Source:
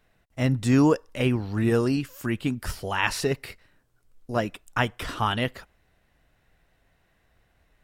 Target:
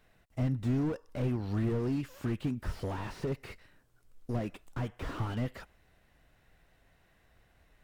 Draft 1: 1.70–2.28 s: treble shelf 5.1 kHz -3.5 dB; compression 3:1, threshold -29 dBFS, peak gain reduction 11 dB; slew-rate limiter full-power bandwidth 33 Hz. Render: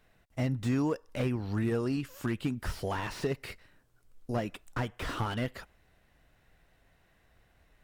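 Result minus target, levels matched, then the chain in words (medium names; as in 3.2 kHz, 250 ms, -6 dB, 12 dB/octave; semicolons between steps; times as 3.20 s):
slew-rate limiter: distortion -6 dB
1.70–2.28 s: treble shelf 5.1 kHz -3.5 dB; compression 3:1, threshold -29 dBFS, peak gain reduction 11 dB; slew-rate limiter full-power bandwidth 11.5 Hz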